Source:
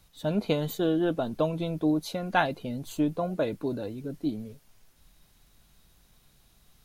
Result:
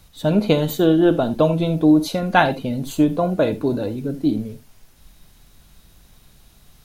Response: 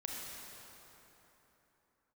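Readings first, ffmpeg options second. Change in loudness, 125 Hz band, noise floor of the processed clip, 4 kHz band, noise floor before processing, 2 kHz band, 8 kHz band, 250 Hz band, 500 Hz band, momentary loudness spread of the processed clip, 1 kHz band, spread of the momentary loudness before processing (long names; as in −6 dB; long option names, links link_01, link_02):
+10.5 dB, +10.5 dB, −53 dBFS, +9.0 dB, −63 dBFS, +9.0 dB, +9.0 dB, +11.0 dB, +10.0 dB, 10 LU, +9.5 dB, 9 LU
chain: -filter_complex "[0:a]asplit=2[link_01][link_02];[1:a]atrim=start_sample=2205,atrim=end_sample=3969,lowshelf=frequency=430:gain=5[link_03];[link_02][link_03]afir=irnorm=-1:irlink=0,volume=-0.5dB[link_04];[link_01][link_04]amix=inputs=2:normalize=0,volume=4.5dB"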